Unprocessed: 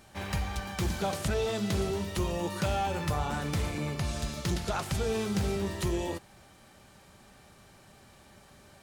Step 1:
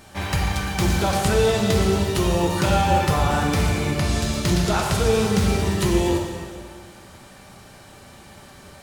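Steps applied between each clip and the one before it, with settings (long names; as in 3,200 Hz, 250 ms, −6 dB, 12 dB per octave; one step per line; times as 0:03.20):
dense smooth reverb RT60 1.9 s, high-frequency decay 0.9×, DRR 0.5 dB
level +8.5 dB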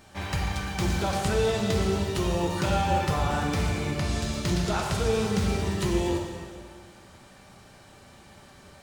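parametric band 12,000 Hz −6.5 dB 0.53 octaves
level −6 dB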